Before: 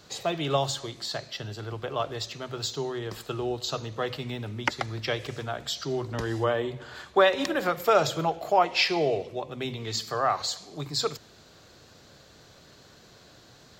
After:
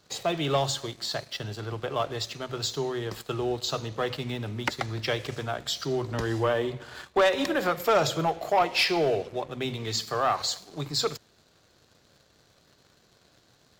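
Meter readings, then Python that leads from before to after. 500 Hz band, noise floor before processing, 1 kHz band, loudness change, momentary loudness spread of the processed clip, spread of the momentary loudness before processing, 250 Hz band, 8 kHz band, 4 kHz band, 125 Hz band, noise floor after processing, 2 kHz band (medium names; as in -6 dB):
0.0 dB, -54 dBFS, -0.5 dB, 0.0 dB, 10 LU, 12 LU, +1.0 dB, +1.5 dB, +1.0 dB, +1.0 dB, -63 dBFS, 0.0 dB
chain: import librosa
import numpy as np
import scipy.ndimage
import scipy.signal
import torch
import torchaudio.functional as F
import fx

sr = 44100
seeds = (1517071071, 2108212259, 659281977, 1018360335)

y = fx.leveller(x, sr, passes=2)
y = y * librosa.db_to_amplitude(-6.0)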